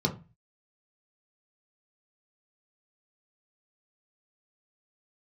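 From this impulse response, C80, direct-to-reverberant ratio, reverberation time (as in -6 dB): 20.0 dB, 0.0 dB, 0.30 s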